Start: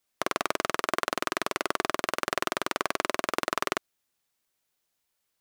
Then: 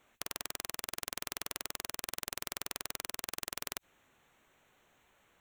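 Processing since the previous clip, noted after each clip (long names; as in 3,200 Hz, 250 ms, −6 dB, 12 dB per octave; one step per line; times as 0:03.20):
adaptive Wiener filter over 9 samples
output level in coarse steps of 19 dB
every bin compressed towards the loudest bin 4 to 1
level +3 dB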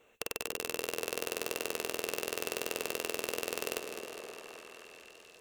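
hollow resonant body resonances 460/2,700 Hz, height 15 dB, ringing for 30 ms
on a send: echo through a band-pass that steps 263 ms, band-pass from 300 Hz, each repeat 0.7 octaves, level −2 dB
on the sum: feedback echo with a swinging delay time 205 ms, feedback 73%, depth 55 cents, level −9 dB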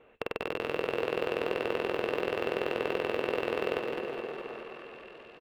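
high-frequency loss of the air 470 metres
repeating echo 212 ms, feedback 47%, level −6 dB
level +8 dB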